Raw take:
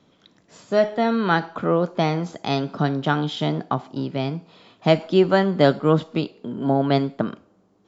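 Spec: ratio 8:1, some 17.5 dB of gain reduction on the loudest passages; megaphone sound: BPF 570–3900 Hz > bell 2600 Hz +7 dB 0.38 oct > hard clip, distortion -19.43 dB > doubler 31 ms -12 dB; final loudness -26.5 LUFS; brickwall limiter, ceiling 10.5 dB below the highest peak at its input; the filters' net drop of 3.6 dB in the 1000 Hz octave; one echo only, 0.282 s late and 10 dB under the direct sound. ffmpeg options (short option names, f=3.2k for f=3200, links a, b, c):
-filter_complex "[0:a]equalizer=f=1k:t=o:g=-4,acompressor=threshold=-30dB:ratio=8,alimiter=level_in=2.5dB:limit=-24dB:level=0:latency=1,volume=-2.5dB,highpass=570,lowpass=3.9k,equalizer=f=2.6k:t=o:w=0.38:g=7,aecho=1:1:282:0.316,asoftclip=type=hard:threshold=-33.5dB,asplit=2[a][b];[b]adelay=31,volume=-12dB[c];[a][c]amix=inputs=2:normalize=0,volume=16.5dB"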